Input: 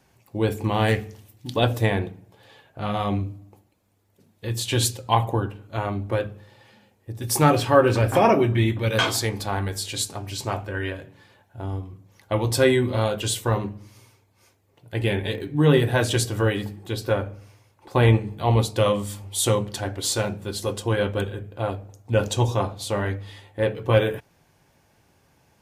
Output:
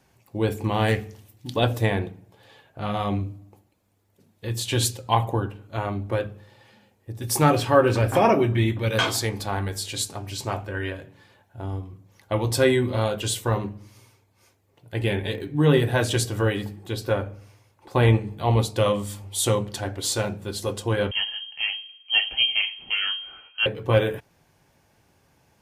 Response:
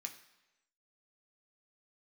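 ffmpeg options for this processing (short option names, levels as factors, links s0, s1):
-filter_complex "[0:a]asettb=1/sr,asplit=3[s0][s1][s2];[s0]atrim=end=21.114[s3];[s1]atrim=start=21.11:end=23.66,asetpts=PTS-STARTPTS,afade=t=in:d=0.004:c=qsin,afade=t=out:st=2.546:d=0.004:c=qsin,lowpass=f=2800:t=q:w=0.5098,lowpass=f=2800:t=q:w=0.6013,lowpass=f=2800:t=q:w=0.9,lowpass=f=2800:t=q:w=2.563,afreqshift=-3300[s4];[s2]atrim=start=23.656[s5];[s3][s4]acrossfade=d=0.004:c1=hsin:c2=qsin[s6];[s6][s5]acrossfade=d=0.004:c1=qsin:c2=hsin,volume=0.891"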